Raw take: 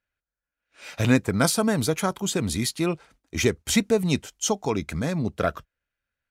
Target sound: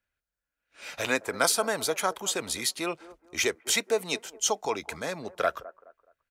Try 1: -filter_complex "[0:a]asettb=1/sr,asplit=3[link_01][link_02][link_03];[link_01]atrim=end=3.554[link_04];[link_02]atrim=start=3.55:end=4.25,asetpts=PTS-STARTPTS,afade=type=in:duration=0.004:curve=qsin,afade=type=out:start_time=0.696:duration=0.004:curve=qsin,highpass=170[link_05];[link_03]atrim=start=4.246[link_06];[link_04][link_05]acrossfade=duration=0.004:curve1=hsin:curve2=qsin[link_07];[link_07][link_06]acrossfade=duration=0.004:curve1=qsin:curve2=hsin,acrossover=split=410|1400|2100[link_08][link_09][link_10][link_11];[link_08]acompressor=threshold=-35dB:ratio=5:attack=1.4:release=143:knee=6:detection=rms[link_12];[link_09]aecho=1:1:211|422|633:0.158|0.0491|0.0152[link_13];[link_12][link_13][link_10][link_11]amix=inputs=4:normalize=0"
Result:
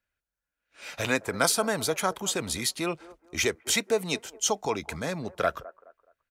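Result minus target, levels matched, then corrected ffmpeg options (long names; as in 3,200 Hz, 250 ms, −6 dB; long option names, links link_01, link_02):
downward compressor: peak gain reduction −9.5 dB
-filter_complex "[0:a]asettb=1/sr,asplit=3[link_01][link_02][link_03];[link_01]atrim=end=3.554[link_04];[link_02]atrim=start=3.55:end=4.25,asetpts=PTS-STARTPTS,afade=type=in:duration=0.004:curve=qsin,afade=type=out:start_time=0.696:duration=0.004:curve=qsin,highpass=170[link_05];[link_03]atrim=start=4.246[link_06];[link_04][link_05]acrossfade=duration=0.004:curve1=hsin:curve2=qsin[link_07];[link_07][link_06]acrossfade=duration=0.004:curve1=qsin:curve2=hsin,acrossover=split=410|1400|2100[link_08][link_09][link_10][link_11];[link_08]acompressor=threshold=-47dB:ratio=5:attack=1.4:release=143:knee=6:detection=rms[link_12];[link_09]aecho=1:1:211|422|633:0.158|0.0491|0.0152[link_13];[link_12][link_13][link_10][link_11]amix=inputs=4:normalize=0"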